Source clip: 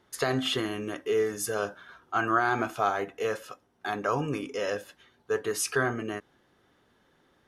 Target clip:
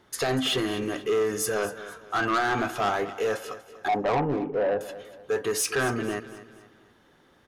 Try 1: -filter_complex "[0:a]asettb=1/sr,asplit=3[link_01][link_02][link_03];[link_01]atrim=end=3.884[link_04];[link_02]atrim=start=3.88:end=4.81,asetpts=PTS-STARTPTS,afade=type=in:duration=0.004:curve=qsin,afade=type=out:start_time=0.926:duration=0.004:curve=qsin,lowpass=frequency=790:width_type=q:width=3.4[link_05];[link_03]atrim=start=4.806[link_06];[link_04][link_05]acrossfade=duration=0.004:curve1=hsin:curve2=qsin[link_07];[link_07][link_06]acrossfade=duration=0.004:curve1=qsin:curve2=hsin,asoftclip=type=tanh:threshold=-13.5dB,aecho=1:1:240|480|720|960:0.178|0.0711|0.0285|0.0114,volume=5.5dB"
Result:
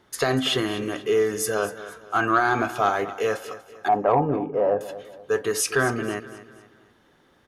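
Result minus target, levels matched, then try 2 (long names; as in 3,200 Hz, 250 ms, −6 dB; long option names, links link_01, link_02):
soft clipping: distortion −14 dB
-filter_complex "[0:a]asettb=1/sr,asplit=3[link_01][link_02][link_03];[link_01]atrim=end=3.884[link_04];[link_02]atrim=start=3.88:end=4.81,asetpts=PTS-STARTPTS,afade=type=in:duration=0.004:curve=qsin,afade=type=out:start_time=0.926:duration=0.004:curve=qsin,lowpass=frequency=790:width_type=q:width=3.4[link_05];[link_03]atrim=start=4.806[link_06];[link_04][link_05]acrossfade=duration=0.004:curve1=hsin:curve2=qsin[link_07];[link_07][link_06]acrossfade=duration=0.004:curve1=qsin:curve2=hsin,asoftclip=type=tanh:threshold=-25.5dB,aecho=1:1:240|480|720|960:0.178|0.0711|0.0285|0.0114,volume=5.5dB"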